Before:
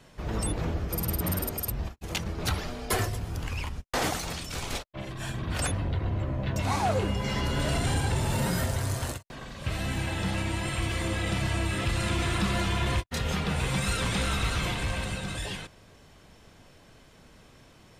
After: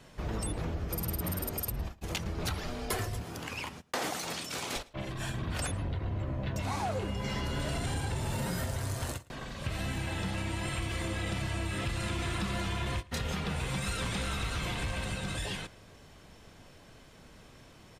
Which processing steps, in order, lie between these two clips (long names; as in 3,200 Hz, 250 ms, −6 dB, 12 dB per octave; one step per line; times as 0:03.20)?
0:03.22–0:04.76: high-pass filter 190 Hz 12 dB per octave
downward compressor 4 to 1, threshold −31 dBFS, peak gain reduction 7.5 dB
slap from a distant wall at 19 metres, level −22 dB